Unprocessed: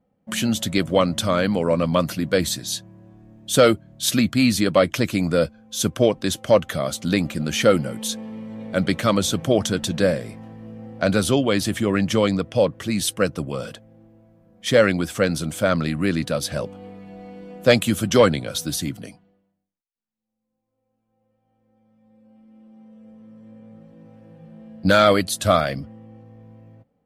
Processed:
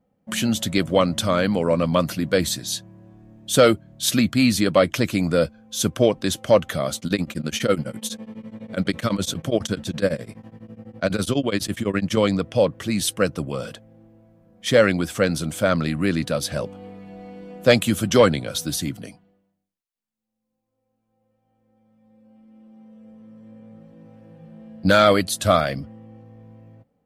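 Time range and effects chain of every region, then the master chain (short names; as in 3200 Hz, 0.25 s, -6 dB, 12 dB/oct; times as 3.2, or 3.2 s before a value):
6.97–12.17 HPF 42 Hz + bell 780 Hz -3.5 dB 0.38 oct + beating tremolo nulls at 12 Hz
whole clip: dry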